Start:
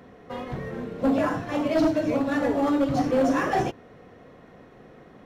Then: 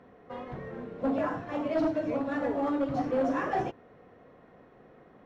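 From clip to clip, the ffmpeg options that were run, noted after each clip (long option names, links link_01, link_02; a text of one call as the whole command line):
ffmpeg -i in.wav -af "lowpass=frequency=1300:poles=1,lowshelf=frequency=410:gain=-7,volume=-2dB" out.wav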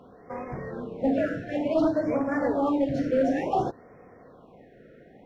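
ffmpeg -i in.wav -af "afftfilt=real='re*(1-between(b*sr/1024,930*pow(3600/930,0.5+0.5*sin(2*PI*0.56*pts/sr))/1.41,930*pow(3600/930,0.5+0.5*sin(2*PI*0.56*pts/sr))*1.41))':imag='im*(1-between(b*sr/1024,930*pow(3600/930,0.5+0.5*sin(2*PI*0.56*pts/sr))/1.41,930*pow(3600/930,0.5+0.5*sin(2*PI*0.56*pts/sr))*1.41))':win_size=1024:overlap=0.75,volume=4.5dB" out.wav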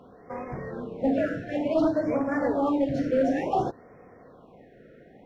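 ffmpeg -i in.wav -af anull out.wav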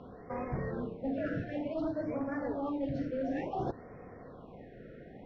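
ffmpeg -i in.wav -af "areverse,acompressor=threshold=-34dB:ratio=6,areverse,lowpass=frequency=5300:width=0.5412,lowpass=frequency=5300:width=1.3066,lowshelf=frequency=140:gain=8.5" out.wav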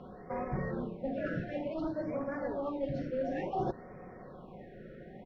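ffmpeg -i in.wav -af "aecho=1:1:5.4:0.45" out.wav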